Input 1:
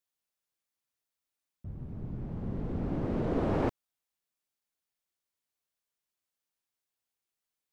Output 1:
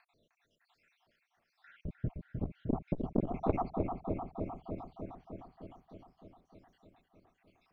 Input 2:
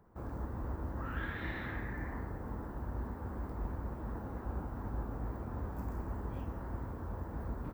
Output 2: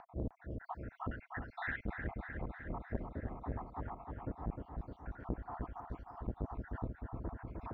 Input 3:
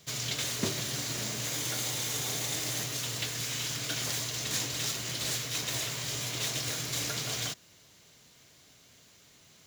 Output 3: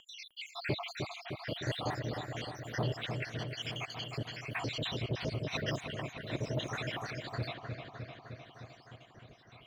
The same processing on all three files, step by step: random holes in the spectrogram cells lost 83%; peaking EQ 660 Hz +7 dB 0.33 oct; upward compressor, threshold -54 dBFS; rotary cabinet horn 1 Hz; distance through air 300 m; on a send: feedback echo behind a low-pass 306 ms, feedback 70%, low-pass 2.7 kHz, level -6 dB; on the sum: transformer saturation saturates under 310 Hz; trim +10 dB

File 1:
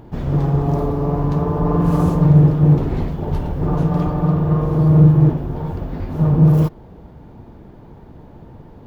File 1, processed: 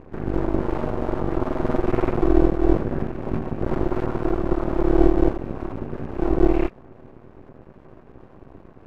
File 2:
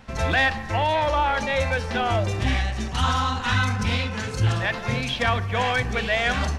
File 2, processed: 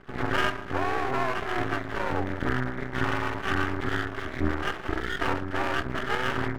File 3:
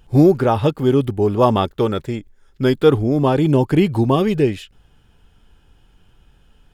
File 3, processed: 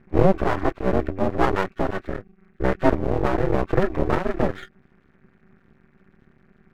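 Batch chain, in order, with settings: knee-point frequency compression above 1.3 kHz 4:1; ring modulator 190 Hz; half-wave rectifier; trim +1 dB

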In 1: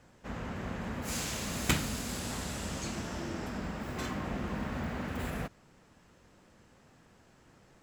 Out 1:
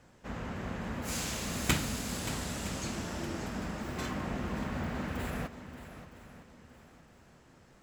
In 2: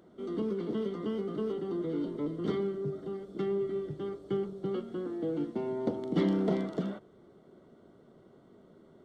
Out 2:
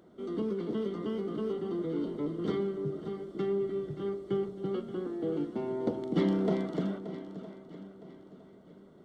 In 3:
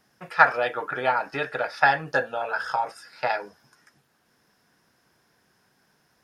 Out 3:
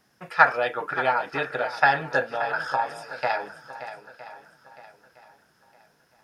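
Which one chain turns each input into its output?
shuffle delay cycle 962 ms, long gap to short 1.5:1, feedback 30%, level -12.5 dB

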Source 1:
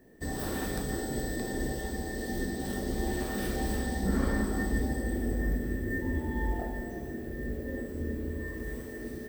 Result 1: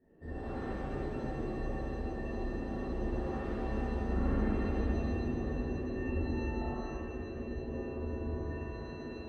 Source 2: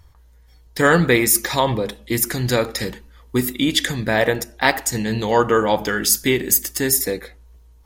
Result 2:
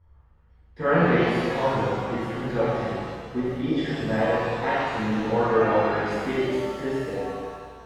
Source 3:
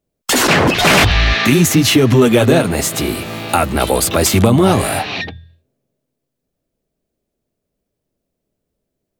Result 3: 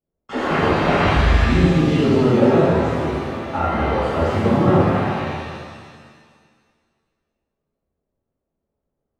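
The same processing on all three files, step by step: low-pass 1.5 kHz 12 dB/octave; pitch-shifted reverb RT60 1.8 s, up +7 st, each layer -8 dB, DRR -12 dB; trim -16 dB

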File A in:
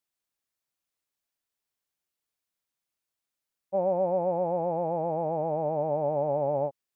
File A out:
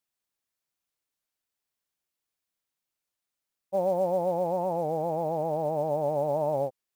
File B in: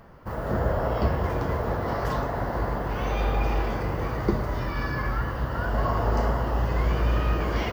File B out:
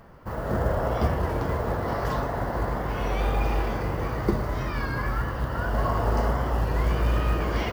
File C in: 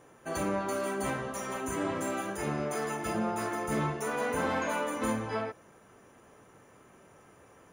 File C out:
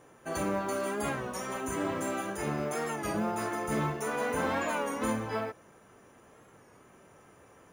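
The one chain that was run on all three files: short-mantissa float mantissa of 4-bit; warped record 33 1/3 rpm, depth 100 cents

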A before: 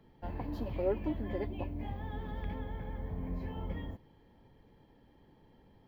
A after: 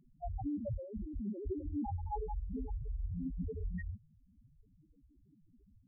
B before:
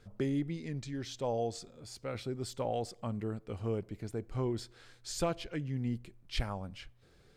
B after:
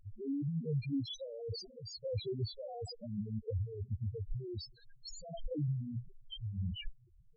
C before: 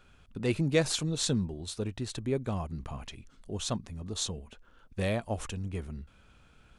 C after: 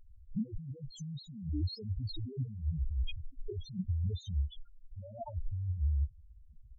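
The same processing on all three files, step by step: spectral noise reduction 9 dB; compressor with a negative ratio -44 dBFS, ratio -1; loudest bins only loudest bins 2; trim +10 dB

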